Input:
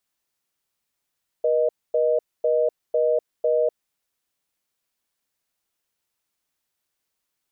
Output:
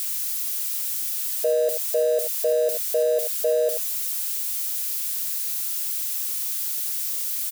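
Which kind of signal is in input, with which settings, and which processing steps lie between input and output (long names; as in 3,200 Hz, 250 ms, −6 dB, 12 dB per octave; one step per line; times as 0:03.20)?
call progress tone reorder tone, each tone −20 dBFS 2.40 s
spike at every zero crossing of −24 dBFS
on a send: single-tap delay 86 ms −10.5 dB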